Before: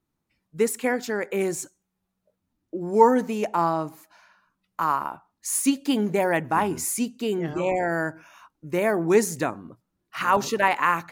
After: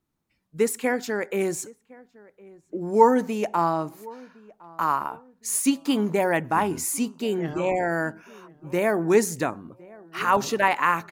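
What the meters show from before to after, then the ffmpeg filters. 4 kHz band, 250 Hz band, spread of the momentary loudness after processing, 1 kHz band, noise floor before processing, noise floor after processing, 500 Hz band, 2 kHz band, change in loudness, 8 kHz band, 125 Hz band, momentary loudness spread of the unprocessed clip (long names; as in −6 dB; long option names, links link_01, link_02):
0.0 dB, 0.0 dB, 15 LU, 0.0 dB, −80 dBFS, −71 dBFS, 0.0 dB, 0.0 dB, 0.0 dB, 0.0 dB, 0.0 dB, 13 LU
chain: -filter_complex "[0:a]asplit=2[link_01][link_02];[link_02]adelay=1061,lowpass=frequency=1300:poles=1,volume=-22.5dB,asplit=2[link_03][link_04];[link_04]adelay=1061,lowpass=frequency=1300:poles=1,volume=0.35[link_05];[link_01][link_03][link_05]amix=inputs=3:normalize=0"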